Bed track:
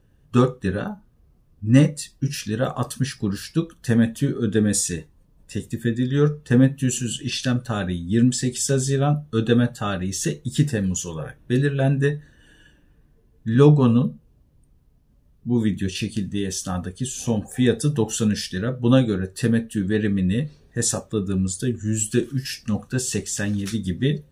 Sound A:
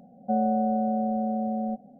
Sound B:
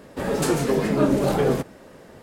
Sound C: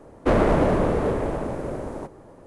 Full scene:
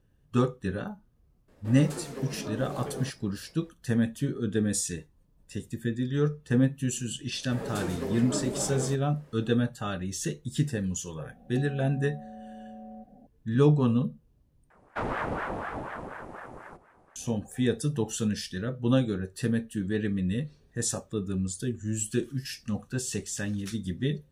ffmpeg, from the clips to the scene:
-filter_complex "[2:a]asplit=2[s0][s1];[0:a]volume=0.422[s2];[s0]alimiter=limit=0.282:level=0:latency=1:release=134[s3];[1:a]acompressor=threshold=0.0112:ratio=6:attack=3.2:release=140:knee=1:detection=peak[s4];[3:a]aeval=exprs='val(0)*sin(2*PI*710*n/s+710*0.75/4.1*sin(2*PI*4.1*n/s))':c=same[s5];[s2]asplit=2[s6][s7];[s6]atrim=end=14.704[s8];[s5]atrim=end=2.46,asetpts=PTS-STARTPTS,volume=0.316[s9];[s7]atrim=start=17.156[s10];[s3]atrim=end=2.22,asetpts=PTS-STARTPTS,volume=0.158,afade=t=in:d=0.004:c=hsin,afade=t=out:st=2.216:d=0.004:c=hsin,adelay=1480[s11];[s1]atrim=end=2.22,asetpts=PTS-STARTPTS,volume=0.237,afade=t=in:d=0.004:c=hsin,afade=t=out:st=2.216:d=0.004:c=hsin,adelay=7330[s12];[s4]atrim=end=1.99,asetpts=PTS-STARTPTS,volume=0.708,afade=t=in:d=0.004:c=hsin,afade=t=out:st=1.986:d=0.004:c=hsin,adelay=11280[s13];[s8][s9]acrossfade=d=0.004:c1=hsin:c2=hsin[s14];[s14][s10]acrossfade=d=0.004:c1=hsin:c2=hsin[s15];[s15][s11][s12][s13]amix=inputs=4:normalize=0"

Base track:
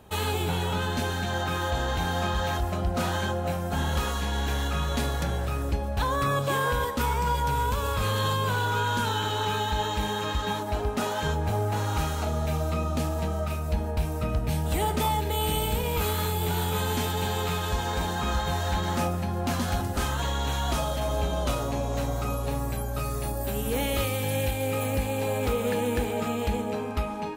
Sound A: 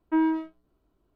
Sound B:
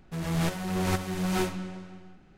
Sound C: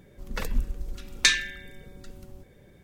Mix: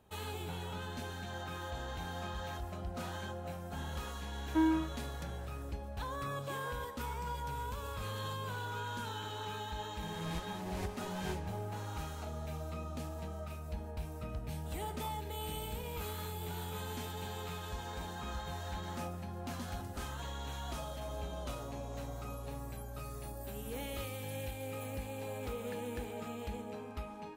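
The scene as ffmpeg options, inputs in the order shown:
-filter_complex "[0:a]volume=0.2[s0];[2:a]asuperstop=centerf=1300:order=4:qfactor=4[s1];[1:a]atrim=end=1.15,asetpts=PTS-STARTPTS,volume=0.501,afade=t=in:d=0.004:c=hsin,afade=t=out:st=1.146:d=0.004:c=hsin,adelay=4430[s2];[s1]atrim=end=2.37,asetpts=PTS-STARTPTS,volume=0.2,afade=t=in:d=0.004:c=hsin,afade=t=out:st=2.366:d=0.004:c=hsin,adelay=9900[s3];[s0][s2][s3]amix=inputs=3:normalize=0"

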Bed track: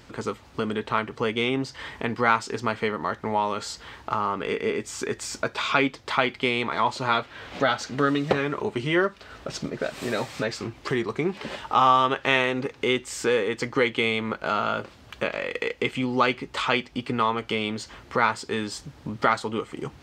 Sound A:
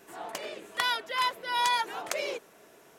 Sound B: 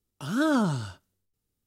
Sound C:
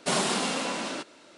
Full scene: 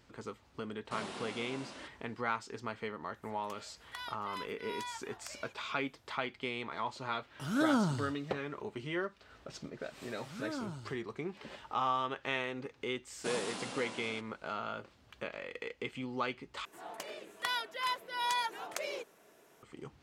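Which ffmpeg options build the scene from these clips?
-filter_complex "[3:a]asplit=2[s0][s1];[1:a]asplit=2[s2][s3];[2:a]asplit=2[s4][s5];[0:a]volume=0.2[s6];[s0]acrossover=split=4400[s7][s8];[s8]acompressor=threshold=0.01:ratio=4:attack=1:release=60[s9];[s7][s9]amix=inputs=2:normalize=0[s10];[s2]highpass=f=690:w=0.5412,highpass=f=690:w=1.3066[s11];[s6]asplit=2[s12][s13];[s12]atrim=end=16.654[s14];[s3]atrim=end=2.98,asetpts=PTS-STARTPTS,volume=0.473[s15];[s13]atrim=start=19.626[s16];[s10]atrim=end=1.37,asetpts=PTS-STARTPTS,volume=0.158,afade=t=in:d=0.004:c=hsin,afade=t=out:st=1.366:d=0.004:c=hsin,adelay=850[s17];[s11]atrim=end=2.98,asetpts=PTS-STARTPTS,volume=0.158,afade=t=in:d=0.004:c=hsin,afade=t=out:st=2.976:d=0.004:c=hsin,adelay=3150[s18];[s4]atrim=end=1.66,asetpts=PTS-STARTPTS,volume=0.531,afade=t=in:d=0.004:c=hsin,afade=t=out:st=1.656:d=0.004:c=hsin,adelay=7190[s19];[s5]atrim=end=1.66,asetpts=PTS-STARTPTS,volume=0.15,afade=t=in:d=0.004:c=hsin,afade=t=out:st=1.656:d=0.004:c=hsin,adelay=10030[s20];[s1]atrim=end=1.37,asetpts=PTS-STARTPTS,volume=0.2,afade=t=in:d=0.004:c=hsin,afade=t=out:st=1.366:d=0.004:c=hsin,adelay=13180[s21];[s14][s15]acrossfade=d=0.004:c1=hsin:c2=hsin[s22];[s22][s16]acrossfade=d=0.004:c1=hsin:c2=hsin[s23];[s23][s17][s18][s19][s20][s21]amix=inputs=6:normalize=0"

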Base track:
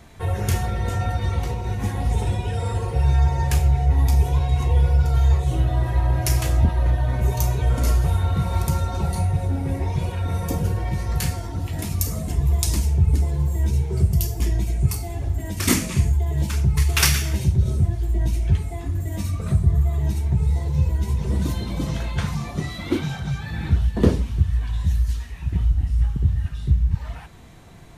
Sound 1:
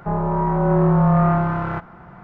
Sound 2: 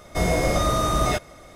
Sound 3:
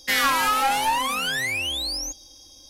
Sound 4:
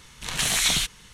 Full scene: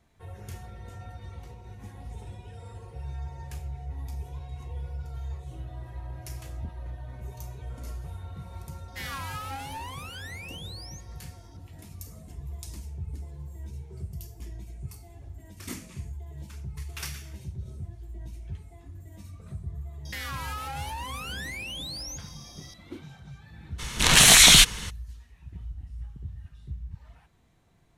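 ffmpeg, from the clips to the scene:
-filter_complex "[3:a]asplit=2[s0][s1];[0:a]volume=0.112[s2];[s1]acompressor=threshold=0.0178:ratio=6:attack=3.2:release=140:knee=1:detection=peak[s3];[4:a]alimiter=level_in=5.96:limit=0.891:release=50:level=0:latency=1[s4];[s0]atrim=end=2.69,asetpts=PTS-STARTPTS,volume=0.15,afade=t=in:d=0.004:c=hsin,afade=t=out:st=2.686:d=0.004:c=hsin,adelay=8880[s5];[s3]atrim=end=2.69,asetpts=PTS-STARTPTS,volume=0.944,afade=t=in:d=0.004:c=hsin,afade=t=out:st=2.686:d=0.004:c=hsin,adelay=20050[s6];[s4]atrim=end=1.13,asetpts=PTS-STARTPTS,volume=0.75,afade=t=in:d=0.02,afade=t=out:st=1.11:d=0.02,adelay=23780[s7];[s2][s5][s6][s7]amix=inputs=4:normalize=0"

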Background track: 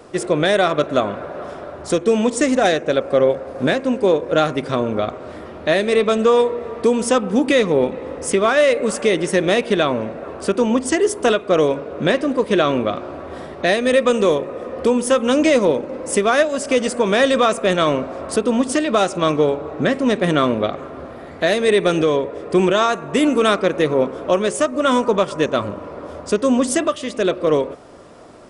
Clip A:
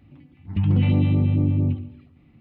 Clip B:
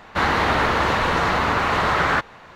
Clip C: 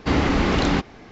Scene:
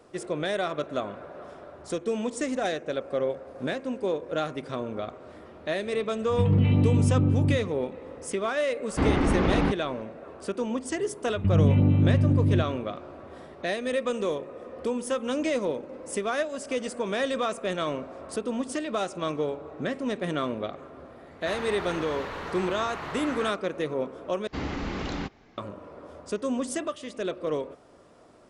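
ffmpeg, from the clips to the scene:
-filter_complex "[1:a]asplit=2[s0][s1];[3:a]asplit=2[s2][s3];[0:a]volume=0.237[s4];[s2]lowpass=f=1400:p=1[s5];[s1]lowpass=f=1500:p=1[s6];[s4]asplit=2[s7][s8];[s7]atrim=end=24.474[s9];[s3]atrim=end=1.11,asetpts=PTS-STARTPTS,volume=0.237[s10];[s8]atrim=start=25.576[s11];[s0]atrim=end=2.4,asetpts=PTS-STARTPTS,volume=0.75,afade=t=in:d=0.004:c=hsin,afade=t=out:st=2.396:d=0.004:c=hsin,adelay=5820[s12];[s5]atrim=end=1.11,asetpts=PTS-STARTPTS,volume=0.708,afade=t=in:d=0.004:c=hsin,afade=t=out:st=1.106:d=0.004:c=hsin,adelay=8910[s13];[s6]atrim=end=2.4,asetpts=PTS-STARTPTS,volume=0.841,afade=t=in:d=0.004:c=hsin,afade=t=out:st=2.396:d=0.004:c=hsin,adelay=10880[s14];[2:a]atrim=end=2.55,asetpts=PTS-STARTPTS,volume=0.141,afade=t=in:d=0.004:c=hsin,afade=t=out:st=2.546:d=0.004:c=hsin,adelay=21300[s15];[s9][s10]acrossfade=d=0.004:c1=hsin:c2=hsin[s16];[s16][s11]acrossfade=d=0.004:c1=hsin:c2=hsin[s17];[s17][s12][s13][s14][s15]amix=inputs=5:normalize=0"

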